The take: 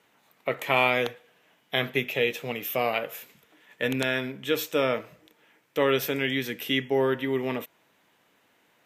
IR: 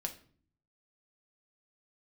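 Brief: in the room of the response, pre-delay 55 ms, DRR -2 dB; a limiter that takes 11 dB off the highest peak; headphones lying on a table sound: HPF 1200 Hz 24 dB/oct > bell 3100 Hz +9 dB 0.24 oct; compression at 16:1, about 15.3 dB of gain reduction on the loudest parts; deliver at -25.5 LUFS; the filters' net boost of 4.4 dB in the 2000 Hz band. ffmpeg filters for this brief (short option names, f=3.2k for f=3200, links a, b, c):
-filter_complex "[0:a]equalizer=f=2k:t=o:g=4.5,acompressor=threshold=-32dB:ratio=16,alimiter=level_in=2dB:limit=-24dB:level=0:latency=1,volume=-2dB,asplit=2[a][b];[1:a]atrim=start_sample=2205,adelay=55[c];[b][c]afir=irnorm=-1:irlink=0,volume=2dB[d];[a][d]amix=inputs=2:normalize=0,highpass=f=1.2k:w=0.5412,highpass=f=1.2k:w=1.3066,equalizer=f=3.1k:t=o:w=0.24:g=9,volume=9.5dB"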